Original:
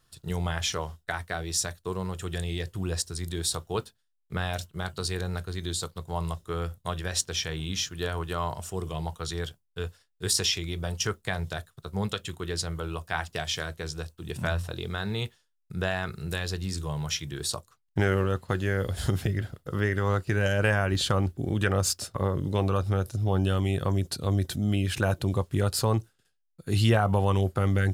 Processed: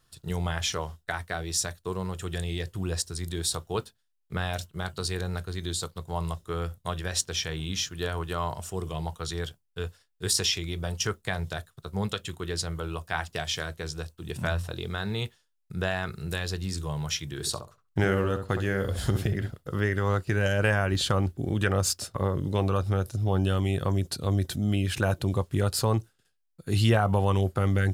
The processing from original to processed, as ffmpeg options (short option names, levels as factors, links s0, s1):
-filter_complex "[0:a]asettb=1/sr,asplit=3[s0][s1][s2];[s0]atrim=end=17.274[s3];[s1]atrim=start=17.27:end=19.5,asetpts=PTS-STARTPTS,afade=t=in:d=0.004:c=qsin,afade=t=out:st=2.226:d=0.004:c=qsin,asplit=2[s4][s5];[s5]adelay=66,lowpass=f=1400:p=1,volume=0.473,asplit=2[s6][s7];[s7]adelay=66,lowpass=f=1400:p=1,volume=0.21,asplit=2[s8][s9];[s9]adelay=66,lowpass=f=1400:p=1,volume=0.21[s10];[s4][s6][s8][s10]amix=inputs=4:normalize=0,atrim=end_sample=98343[s11];[s2]atrim=start=19.496[s12];[s3][s11]acrossfade=d=0.004:c1=hsin:c2=qsin[s13];[s13][s12]acrossfade=d=0.004:c1=qsin:c2=hsin"